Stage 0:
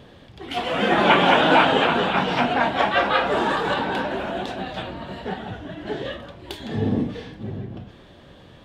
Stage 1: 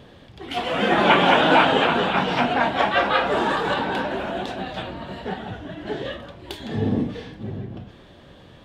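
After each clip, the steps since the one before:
no processing that can be heard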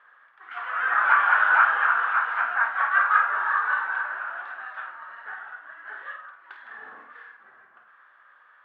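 variable-slope delta modulation 64 kbit/s
flat-topped band-pass 1,400 Hz, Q 2.5
on a send: flutter between parallel walls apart 8.6 metres, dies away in 0.35 s
on the sum: level +5 dB

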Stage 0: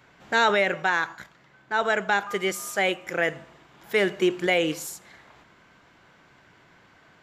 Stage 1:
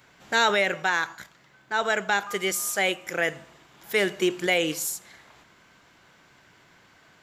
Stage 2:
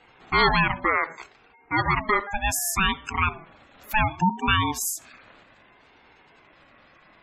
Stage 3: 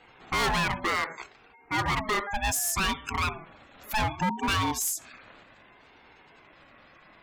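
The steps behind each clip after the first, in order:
high-shelf EQ 4,100 Hz +10.5 dB; level −2 dB
gate on every frequency bin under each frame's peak −15 dB strong; ring modulator whose carrier an LFO sweeps 510 Hz, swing 20%, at 0.66 Hz; level +5.5 dB
hard clipping −22.5 dBFS, distortion −6 dB

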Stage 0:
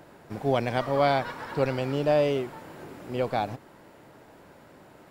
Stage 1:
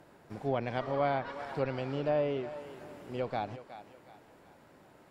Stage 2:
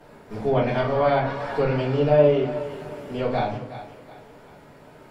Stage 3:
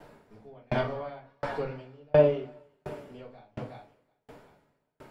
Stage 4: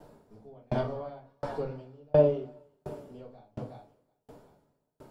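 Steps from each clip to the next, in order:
treble cut that deepens with the level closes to 2,400 Hz, closed at −19 dBFS; feedback echo with a high-pass in the loop 367 ms, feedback 41%, high-pass 420 Hz, level −12 dB; level −7 dB
rectangular room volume 39 cubic metres, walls mixed, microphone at 1.7 metres
tremolo with a ramp in dB decaying 1.4 Hz, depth 39 dB
parametric band 2,100 Hz −12 dB 1.5 octaves

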